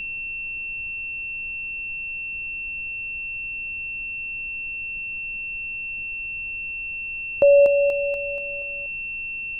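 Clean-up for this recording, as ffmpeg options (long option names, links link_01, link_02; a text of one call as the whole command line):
ffmpeg -i in.wav -af "bandreject=frequency=2700:width=30,afftdn=noise_reduction=30:noise_floor=-31" out.wav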